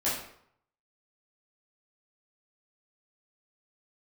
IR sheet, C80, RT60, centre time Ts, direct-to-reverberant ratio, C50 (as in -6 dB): 7.0 dB, 0.65 s, 47 ms, -10.0 dB, 2.5 dB